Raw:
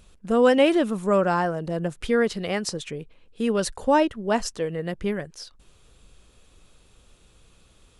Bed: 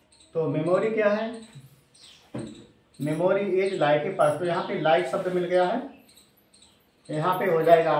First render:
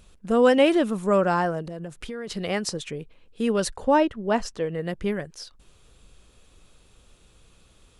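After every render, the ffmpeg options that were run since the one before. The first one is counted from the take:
-filter_complex "[0:a]asplit=3[a][b][c];[a]afade=t=out:st=1.61:d=0.02[d];[b]acompressor=threshold=-32dB:ratio=5:attack=3.2:release=140:knee=1:detection=peak,afade=t=in:st=1.61:d=0.02,afade=t=out:st=2.27:d=0.02[e];[c]afade=t=in:st=2.27:d=0.02[f];[d][e][f]amix=inputs=3:normalize=0,asettb=1/sr,asplit=3[g][h][i];[g]atrim=end=3.724[j];[h]atrim=start=3.72:end=4.75,asetpts=PTS-STARTPTS,afade=t=in:d=0.004:c=qsin,afade=t=out:st=1.026:d=0.004:c=qsin,lowpass=f=3.7k:p=1[k];[i]atrim=start=4.746[l];[j][k]acrossfade=d=0.004:c1=hsin:c2=qsin[m];[m][l]acrossfade=d=0.004:c1=qsin:c2=hsin"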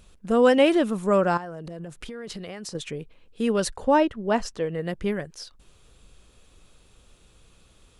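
-filter_complex "[0:a]asettb=1/sr,asplit=3[a][b][c];[a]atrim=end=1.374[d];[b]atrim=start=1.37:end=2.75,asetpts=PTS-STARTPTS,afade=t=in:d=0.004:c=qsin,afade=t=out:st=1.376:d=0.004:c=qsin,acompressor=threshold=-32dB:ratio=12:attack=3.2:release=140:knee=1:detection=peak[e];[c]atrim=start=2.746[f];[d][e]acrossfade=d=0.004:c1=hsin:c2=qsin[g];[g][f]acrossfade=d=0.004:c1=qsin:c2=hsin"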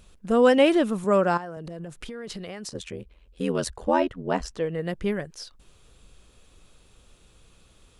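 -filter_complex "[0:a]asettb=1/sr,asplit=3[a][b][c];[a]atrim=end=1.044[d];[b]atrim=start=1.04:end=1.57,asetpts=PTS-STARTPTS,afade=t=in:d=0.004:c=qsin,afade=t=out:st=0.526:d=0.004:c=qsin,highpass=130[e];[c]atrim=start=1.566[f];[d][e]acrossfade=d=0.004:c1=hsin:c2=qsin[g];[g][f]acrossfade=d=0.004:c1=qsin:c2=hsin,asettb=1/sr,asplit=3[h][i][j];[h]atrim=end=2.694[k];[i]atrim=start=2.69:end=4.51,asetpts=PTS-STARTPTS,afade=t=in:d=0.004:c=qsin,afade=t=out:st=1.816:d=0.004:c=qsin,aeval=exprs='val(0)*sin(2*PI*42*n/s)':c=same[l];[j]atrim=start=4.506[m];[k][l]acrossfade=d=0.004:c1=hsin:c2=qsin[n];[n][m]acrossfade=d=0.004:c1=qsin:c2=hsin"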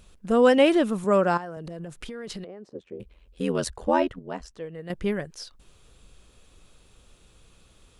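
-filter_complex "[0:a]asettb=1/sr,asplit=3[a][b][c];[a]atrim=end=2.444[d];[b]atrim=start=2.44:end=3,asetpts=PTS-STARTPTS,afade=t=in:d=0.004:c=qsin,afade=t=out:st=0.556:d=0.004:c=qsin,bandpass=f=380:t=q:w=1.4[e];[c]atrim=start=2.996[f];[d][e]acrossfade=d=0.004:c1=hsin:c2=qsin[g];[g][f]acrossfade=d=0.004:c1=qsin:c2=hsin,asplit=3[h][i][j];[h]atrim=end=4.192[k];[i]atrim=start=4.188:end=4.902,asetpts=PTS-STARTPTS,volume=-9dB[l];[j]atrim=start=4.898[m];[k][l]acrossfade=d=0.004:c1=hsin:c2=hsin[n];[n][m]acrossfade=d=0.004:c1=hsin:c2=hsin"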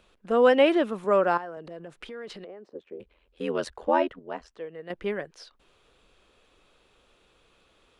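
-filter_complex "[0:a]acrossover=split=280 4000:gain=0.2 1 0.2[a][b][c];[a][b][c]amix=inputs=3:normalize=0"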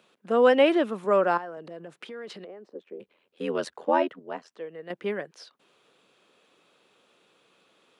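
-af "highpass=f=150:w=0.5412,highpass=f=150:w=1.3066"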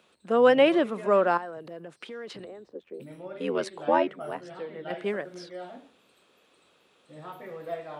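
-filter_complex "[1:a]volume=-18dB[a];[0:a][a]amix=inputs=2:normalize=0"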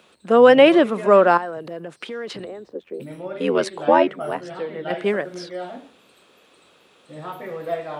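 -af "volume=8.5dB,alimiter=limit=-2dB:level=0:latency=1"

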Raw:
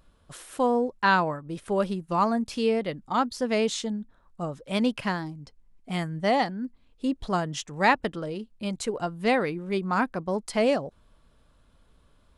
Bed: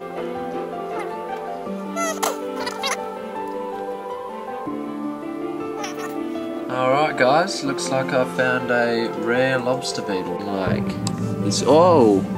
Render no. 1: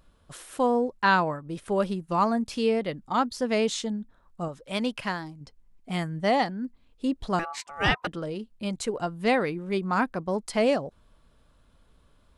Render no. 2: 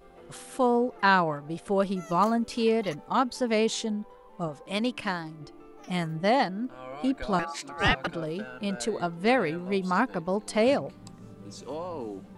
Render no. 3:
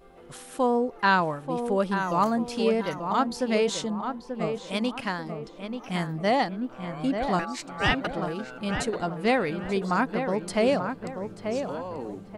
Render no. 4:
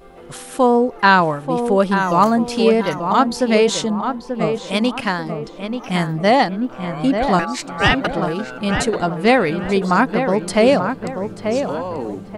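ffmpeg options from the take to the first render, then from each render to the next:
-filter_complex "[0:a]asettb=1/sr,asplit=3[a][b][c];[a]atrim=end=4.484[d];[b]atrim=start=4.48:end=5.41,asetpts=PTS-STARTPTS,afade=t=in:d=0.004:c=qsin,afade=t=out:st=0.926:d=0.004:c=qsin,equalizer=f=150:w=0.31:g=-5[e];[c]atrim=start=5.406[f];[d][e]acrossfade=d=0.004:c1=hsin:c2=qsin[g];[g][f]acrossfade=d=0.004:c1=qsin:c2=hsin,asettb=1/sr,asplit=3[h][i][j];[h]atrim=end=7.394[k];[i]atrim=start=7.39:end=8.07,asetpts=PTS-STARTPTS,afade=t=in:d=0.004:c=qsin,afade=t=out:st=0.676:d=0.004:c=qsin,aeval=exprs='val(0)*sin(2*PI*1000*n/s)':c=same[l];[j]atrim=start=8.066[m];[k][l]acrossfade=d=0.004:c1=hsin:c2=qsin[n];[n][m]acrossfade=d=0.004:c1=qsin:c2=hsin"
-filter_complex "[1:a]volume=-22.5dB[a];[0:a][a]amix=inputs=2:normalize=0"
-filter_complex "[0:a]asplit=2[a][b];[b]adelay=886,lowpass=f=2k:p=1,volume=-6.5dB,asplit=2[c][d];[d]adelay=886,lowpass=f=2k:p=1,volume=0.39,asplit=2[e][f];[f]adelay=886,lowpass=f=2k:p=1,volume=0.39,asplit=2[g][h];[h]adelay=886,lowpass=f=2k:p=1,volume=0.39,asplit=2[i][j];[j]adelay=886,lowpass=f=2k:p=1,volume=0.39[k];[a][c][e][g][i][k]amix=inputs=6:normalize=0"
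-af "volume=9.5dB,alimiter=limit=-1dB:level=0:latency=1"

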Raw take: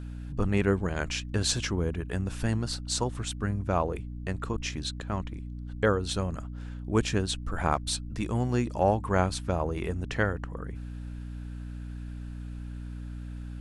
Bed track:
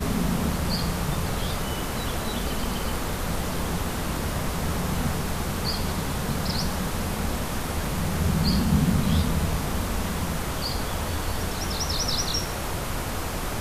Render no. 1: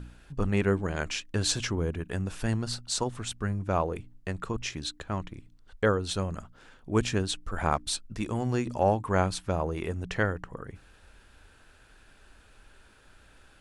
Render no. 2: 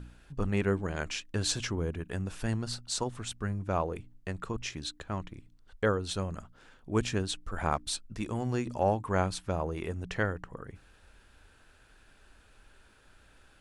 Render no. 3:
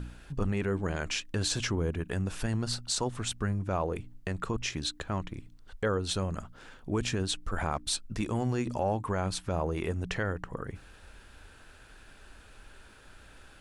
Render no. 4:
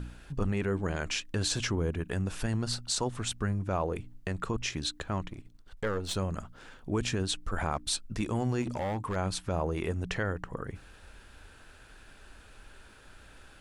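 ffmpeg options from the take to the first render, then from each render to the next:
-af "bandreject=f=60:t=h:w=4,bandreject=f=120:t=h:w=4,bandreject=f=180:t=h:w=4,bandreject=f=240:t=h:w=4,bandreject=f=300:t=h:w=4"
-af "volume=-3dB"
-filter_complex "[0:a]asplit=2[a][b];[b]acompressor=threshold=-38dB:ratio=6,volume=1dB[c];[a][c]amix=inputs=2:normalize=0,alimiter=limit=-19.5dB:level=0:latency=1:release=11"
-filter_complex "[0:a]asettb=1/sr,asplit=3[a][b][c];[a]atrim=end=5.304[d];[b]atrim=start=5.3:end=6.15,asetpts=PTS-STARTPTS,afade=t=in:d=0.004:c=qsin,afade=t=out:st=0.846:d=0.004:c=qsin,aeval=exprs='if(lt(val(0),0),0.447*val(0),val(0))':c=same[e];[c]atrim=start=6.146[f];[d][e]acrossfade=d=0.004:c1=hsin:c2=qsin[g];[g][f]acrossfade=d=0.004:c1=qsin:c2=hsin,asettb=1/sr,asplit=3[h][i][j];[h]atrim=end=8.624[k];[i]atrim=start=8.62:end=9.16,asetpts=PTS-STARTPTS,afade=t=in:d=0.004:c=qsin,afade=t=out:st=0.536:d=0.004:c=qsin,asoftclip=type=hard:threshold=-28dB[l];[j]atrim=start=9.156[m];[k][l]acrossfade=d=0.004:c1=hsin:c2=qsin[n];[n][m]acrossfade=d=0.004:c1=qsin:c2=hsin"

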